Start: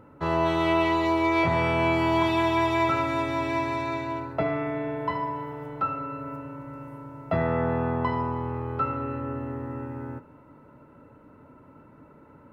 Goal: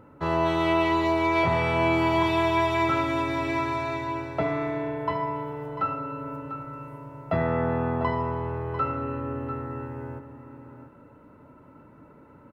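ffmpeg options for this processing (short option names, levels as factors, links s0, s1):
-af "aecho=1:1:695:0.266"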